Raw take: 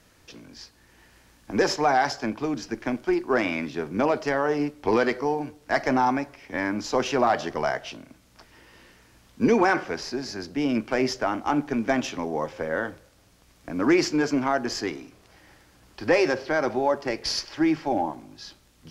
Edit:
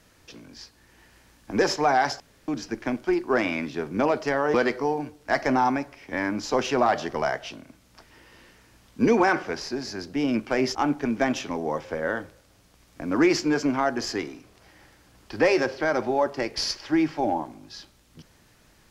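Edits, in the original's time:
0:02.20–0:02.48: fill with room tone
0:04.54–0:04.95: remove
0:11.16–0:11.43: remove

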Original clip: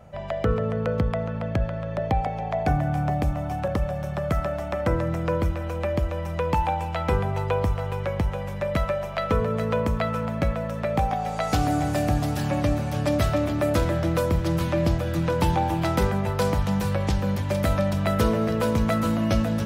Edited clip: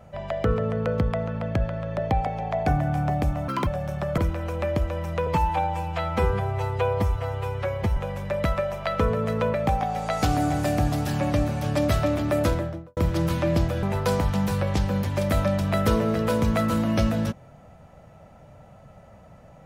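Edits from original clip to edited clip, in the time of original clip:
0:03.48–0:03.82: play speed 181%
0:04.33–0:05.39: remove
0:06.48–0:08.28: time-stretch 1.5×
0:09.85–0:10.84: remove
0:13.71–0:14.27: fade out and dull
0:15.13–0:16.16: remove

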